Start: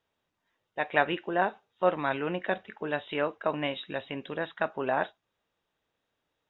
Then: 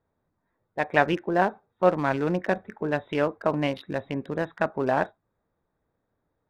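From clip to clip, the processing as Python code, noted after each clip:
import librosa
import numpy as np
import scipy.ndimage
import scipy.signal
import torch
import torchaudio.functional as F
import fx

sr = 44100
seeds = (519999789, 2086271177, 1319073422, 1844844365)

y = fx.wiener(x, sr, points=15)
y = fx.low_shelf(y, sr, hz=270.0, db=9.0)
y = y * librosa.db_to_amplitude(3.0)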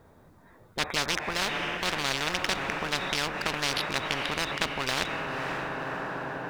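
y = fx.echo_diffused(x, sr, ms=537, feedback_pct=50, wet_db=-15.0)
y = fx.spectral_comp(y, sr, ratio=10.0)
y = y * librosa.db_to_amplitude(-4.5)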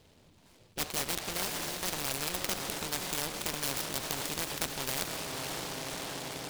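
y = fx.noise_mod_delay(x, sr, seeds[0], noise_hz=3100.0, depth_ms=0.18)
y = y * librosa.db_to_amplitude(-5.0)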